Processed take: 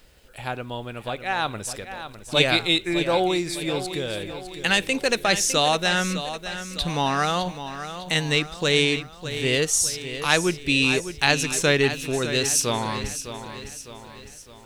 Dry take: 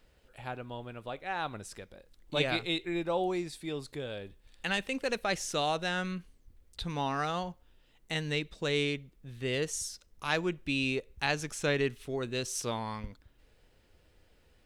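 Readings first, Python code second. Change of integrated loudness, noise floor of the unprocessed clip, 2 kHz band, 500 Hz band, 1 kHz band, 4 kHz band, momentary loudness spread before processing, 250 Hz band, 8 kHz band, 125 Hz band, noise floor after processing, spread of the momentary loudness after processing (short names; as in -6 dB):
+11.0 dB, -65 dBFS, +11.5 dB, +9.0 dB, +9.5 dB, +13.5 dB, 12 LU, +9.0 dB, +15.5 dB, +9.0 dB, -45 dBFS, 14 LU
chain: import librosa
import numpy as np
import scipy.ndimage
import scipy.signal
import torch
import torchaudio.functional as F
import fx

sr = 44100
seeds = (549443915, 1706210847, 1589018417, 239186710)

p1 = fx.high_shelf(x, sr, hz=3200.0, db=8.0)
p2 = p1 + fx.echo_feedback(p1, sr, ms=606, feedback_pct=49, wet_db=-11, dry=0)
y = F.gain(torch.from_numpy(p2), 8.5).numpy()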